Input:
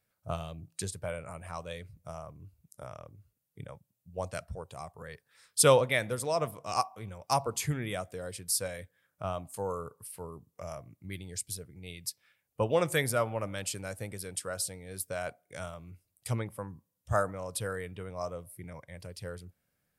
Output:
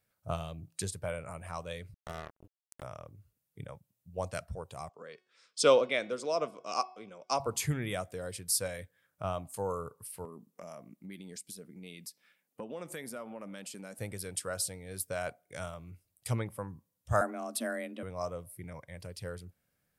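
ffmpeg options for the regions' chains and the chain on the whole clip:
-filter_complex "[0:a]asettb=1/sr,asplit=3[a][b][c];[a]atrim=end=1.944[d];[b]atrim=start=1.94:end=2.83,asetpts=PTS-STARTPTS,afade=t=in:d=0.004:c=qsin,afade=t=out:st=0.886:d=0.004:c=qsin,asubboost=boost=7.5:cutoff=180,acrusher=bits=5:mix=0:aa=0.5[e];[c]atrim=start=2.826[f];[d][e]acrossfade=d=0.004:c1=hsin:c2=qsin[g];[g][f]acrossfade=d=0.004:c1=qsin:c2=hsin,asettb=1/sr,asplit=3[h][i][j];[h]atrim=end=4.894[k];[i]atrim=start=4.89:end=7.4,asetpts=PTS-STARTPTS,afade=t=in:d=0.004:c=qsin,afade=t=out:st=2.506:d=0.004:c=qsin,highpass=f=220:w=0.5412,highpass=f=220:w=1.3066,equalizer=f=870:t=q:w=4:g=-7,equalizer=f=1.8k:t=q:w=4:g=-8,equalizer=f=4k:t=q:w=4:g=-3,lowpass=f=6.6k:w=0.5412,lowpass=f=6.6k:w=1.3066,bandreject=f=368.6:t=h:w=4,bandreject=f=737.2:t=h:w=4,bandreject=f=1.1058k:t=h:w=4,bandreject=f=1.4744k:t=h:w=4,bandreject=f=1.843k:t=h:w=4,bandreject=f=2.2116k:t=h:w=4,bandreject=f=2.5802k:t=h:w=4,bandreject=f=2.9488k:t=h:w=4,bandreject=f=3.3174k:t=h:w=4,bandreject=f=3.686k:t=h:w=4,bandreject=f=4.0546k:t=h:w=4,bandreject=f=4.4232k:t=h:w=4,bandreject=f=4.7918k:t=h:w=4,bandreject=f=5.1604k:t=h:w=4,bandreject=f=5.529k:t=h:w=4[l];[j]atrim=start=7.396[m];[k][l]acrossfade=d=0.004:c1=hsin:c2=qsin[n];[n][m]acrossfade=d=0.004:c1=qsin:c2=hsin,asettb=1/sr,asplit=3[o][p][q];[o]atrim=end=10.254[r];[p]atrim=start=10.25:end=13.98,asetpts=PTS-STARTPTS,afade=t=in:d=0.004:c=qsin,afade=t=out:st=3.726:d=0.004:c=qsin,lowshelf=f=140:t=q:w=3:g=-14,acompressor=threshold=-43dB:ratio=3:attack=3.2:release=140:knee=1:detection=peak[s];[q]atrim=start=13.976[t];[r][s]acrossfade=d=0.004:c1=hsin:c2=qsin[u];[u][t]acrossfade=d=0.004:c1=qsin:c2=hsin,asettb=1/sr,asplit=3[v][w][x];[v]atrim=end=17.214[y];[w]atrim=start=17.21:end=18.03,asetpts=PTS-STARTPTS,afade=t=in:d=0.004:c=qsin,afade=t=out:st=0.816:d=0.004:c=qsin,afreqshift=120,bandreject=f=870:w=12[z];[x]atrim=start=18.026[aa];[y][z]acrossfade=d=0.004:c1=hsin:c2=qsin[ab];[ab][aa]acrossfade=d=0.004:c1=qsin:c2=hsin"

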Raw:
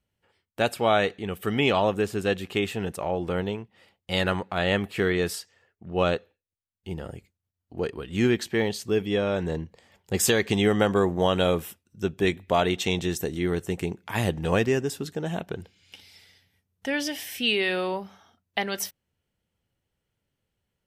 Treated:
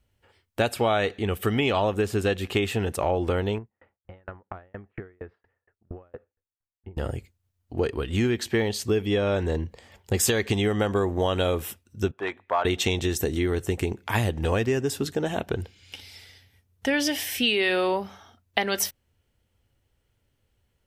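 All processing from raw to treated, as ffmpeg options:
-filter_complex "[0:a]asettb=1/sr,asplit=3[a][b][c];[a]atrim=end=3.584[d];[b]atrim=start=3.58:end=6.97,asetpts=PTS-STARTPTS,afade=t=in:d=0.004:c=qsin,afade=t=out:st=3.386:d=0.004:c=qsin,lowpass=f=1.8k:w=0.5412,lowpass=f=1.8k:w=1.3066,acompressor=threshold=-35dB:ratio=12:attack=3.2:release=140:knee=1:detection=peak,aeval=exprs='val(0)*pow(10,-38*if(lt(mod(4.3*n/s,1),2*abs(4.3)/1000),1-mod(4.3*n/s,1)/(2*abs(4.3)/1000),(mod(4.3*n/s,1)-2*abs(4.3)/1000)/(1-2*abs(4.3)/1000))/20)':c=same[e];[c]atrim=start=6.966[f];[d][e]acrossfade=d=0.004:c1=hsin:c2=qsin[g];[g][f]acrossfade=d=0.004:c1=qsin:c2=hsin,asettb=1/sr,asplit=3[h][i][j];[h]atrim=end=12.114[k];[i]atrim=start=12.11:end=12.65,asetpts=PTS-STARTPTS,afade=t=in:d=0.004:c=qsin,afade=t=out:st=0.536:d=0.004:c=qsin,asoftclip=type=hard:threshold=-15dB,bandpass=f=1.1k:t=q:w=1.9[l];[j]atrim=start=12.646[m];[k][l]acrossfade=d=0.004:c1=hsin:c2=qsin[n];[n][m]acrossfade=d=0.004:c1=qsin:c2=hsin,lowshelf=f=120:g=8.5,acompressor=threshold=-25dB:ratio=6,equalizer=f=170:t=o:w=0.32:g=-12.5,volume=6dB"

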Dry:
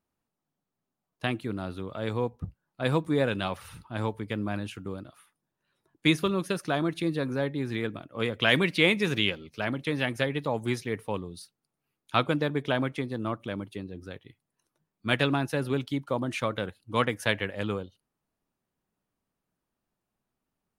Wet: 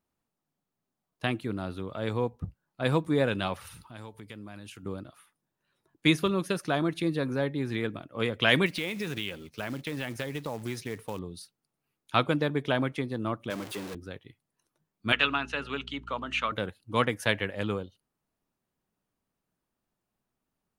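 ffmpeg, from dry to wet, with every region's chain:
-filter_complex "[0:a]asettb=1/sr,asplit=3[a][b][c];[a]atrim=end=3.674[d];[b]atrim=start=3.67:end=4.83,asetpts=PTS-STARTPTS,afade=t=in:d=0.004:c=qsin,afade=t=out:st=1.156:d=0.004:c=qsin,highshelf=f=3.3k:g=9.5,acompressor=threshold=-46dB:ratio=2.5:attack=3.2:release=140:knee=1:detection=peak[e];[c]atrim=start=4.826[f];[d][e]acrossfade=d=0.004:c1=hsin:c2=qsin[g];[g][f]acrossfade=d=0.004:c1=qsin:c2=hsin,asettb=1/sr,asplit=3[h][i][j];[h]atrim=end=8.664[k];[i]atrim=start=8.66:end=11.19,asetpts=PTS-STARTPTS,afade=t=in:d=0.004:c=qsin,afade=t=out:st=2.526:d=0.004:c=qsin,acompressor=threshold=-30dB:ratio=4:attack=3.2:release=140:knee=1:detection=peak,acrusher=bits=4:mode=log:mix=0:aa=0.000001[l];[j]atrim=start=11.186[m];[k][l]acrossfade=d=0.004:c1=hsin:c2=qsin[n];[n][m]acrossfade=d=0.004:c1=qsin:c2=hsin,asettb=1/sr,asplit=3[o][p][q];[o]atrim=end=13.504[r];[p]atrim=start=13.5:end=13.95,asetpts=PTS-STARTPTS,afade=t=in:d=0.004:c=qsin,afade=t=out:st=0.446:d=0.004:c=qsin,aeval=exprs='val(0)+0.5*0.0224*sgn(val(0))':c=same,highpass=f=350:p=1[s];[q]atrim=start=13.946[t];[r][s]acrossfade=d=0.004:c1=hsin:c2=qsin[u];[u][t]acrossfade=d=0.004:c1=qsin:c2=hsin,asettb=1/sr,asplit=3[v][w][x];[v]atrim=end=15.124[y];[w]atrim=start=15.12:end=16.52,asetpts=PTS-STARTPTS,afade=t=in:d=0.004:c=qsin,afade=t=out:st=1.396:d=0.004:c=qsin,highpass=340,equalizer=f=350:t=q:w=4:g=-10,equalizer=f=530:t=q:w=4:g=-8,equalizer=f=760:t=q:w=4:g=-5,equalizer=f=1.3k:t=q:w=4:g=7,equalizer=f=2.8k:t=q:w=4:g=10,equalizer=f=5.2k:t=q:w=4:g=-7,lowpass=f=6.8k:w=0.5412,lowpass=f=6.8k:w=1.3066,aeval=exprs='val(0)+0.00398*(sin(2*PI*60*n/s)+sin(2*PI*2*60*n/s)/2+sin(2*PI*3*60*n/s)/3+sin(2*PI*4*60*n/s)/4+sin(2*PI*5*60*n/s)/5)':c=same,bandreject=f=50:t=h:w=6,bandreject=f=100:t=h:w=6,bandreject=f=150:t=h:w=6,bandreject=f=200:t=h:w=6,bandreject=f=250:t=h:w=6,bandreject=f=300:t=h:w=6,bandreject=f=350:t=h:w=6,bandreject=f=400:t=h:w=6,bandreject=f=450:t=h:w=6[z];[x]atrim=start=16.516[aa];[y][z]acrossfade=d=0.004:c1=hsin:c2=qsin[ab];[ab][aa]acrossfade=d=0.004:c1=qsin:c2=hsin"

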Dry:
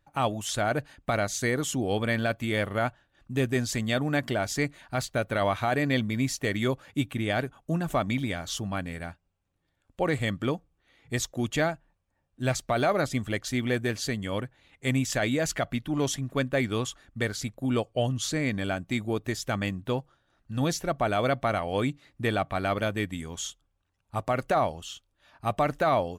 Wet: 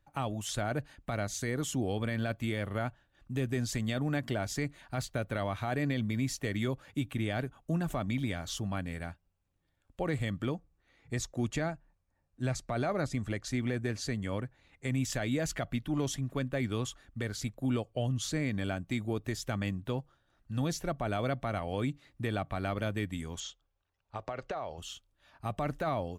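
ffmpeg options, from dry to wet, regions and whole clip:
-filter_complex "[0:a]asettb=1/sr,asplit=3[a][b][c];[a]atrim=end=10.544[d];[b]atrim=start=10.54:end=14.93,asetpts=PTS-STARTPTS,afade=t=in:d=0.004:c=qsin,afade=t=out:st=4.386:d=0.004:c=qsin,lowpass=9.8k,equalizer=f=3.2k:w=3.6:g=-6[e];[c]atrim=start=14.926[f];[d][e]acrossfade=d=0.004:c1=hsin:c2=qsin[g];[g][f]acrossfade=d=0.004:c1=qsin:c2=hsin,asettb=1/sr,asplit=3[h][i][j];[h]atrim=end=23.404[k];[i]atrim=start=23.4:end=24.78,asetpts=PTS-STARTPTS,afade=t=in:d=0.004:c=qsin,afade=t=out:st=1.376:d=0.004:c=qsin,lowshelf=f=330:t=q:w=1.5:g=-6,acompressor=threshold=-29dB:ratio=4:attack=3.2:release=140:knee=1:detection=peak,lowpass=f=6k:w=0.5412,lowpass=f=6k:w=1.3066[l];[j]atrim=start=24.776[m];[k][l]acrossfade=d=0.004:c1=hsin:c2=qsin[n];[n][m]acrossfade=d=0.004:c1=qsin:c2=hsin,acrossover=split=320[o][p];[p]acompressor=threshold=-34dB:ratio=1.5[q];[o][q]amix=inputs=2:normalize=0,lowshelf=f=95:g=5.5,alimiter=limit=-18dB:level=0:latency=1:release=71,volume=-3.5dB"

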